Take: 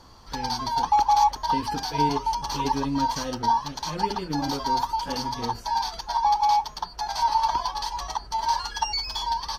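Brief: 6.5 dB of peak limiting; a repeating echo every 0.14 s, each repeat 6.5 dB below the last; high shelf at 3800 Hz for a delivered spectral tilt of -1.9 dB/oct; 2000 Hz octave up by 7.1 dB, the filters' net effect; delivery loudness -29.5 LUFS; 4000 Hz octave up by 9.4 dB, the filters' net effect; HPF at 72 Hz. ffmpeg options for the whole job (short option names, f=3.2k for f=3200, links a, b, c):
-af "highpass=72,equalizer=f=2k:t=o:g=6.5,highshelf=f=3.8k:g=5,equalizer=f=4k:t=o:g=6.5,alimiter=limit=-13.5dB:level=0:latency=1,aecho=1:1:140|280|420|560|700|840:0.473|0.222|0.105|0.0491|0.0231|0.0109,volume=-7dB"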